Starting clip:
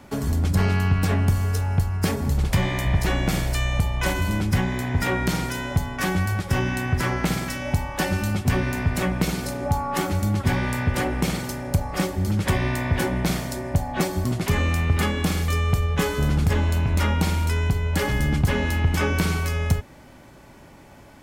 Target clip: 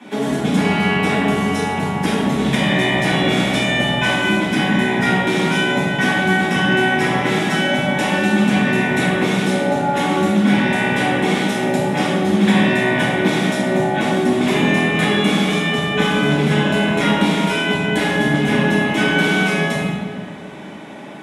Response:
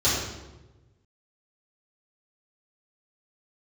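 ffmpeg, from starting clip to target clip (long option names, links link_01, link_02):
-filter_complex "[0:a]highpass=frequency=200:width=0.5412,highpass=frequency=200:width=1.3066,acompressor=threshold=-27dB:ratio=6[link_01];[1:a]atrim=start_sample=2205,asetrate=23814,aresample=44100[link_02];[link_01][link_02]afir=irnorm=-1:irlink=0,volume=-7dB"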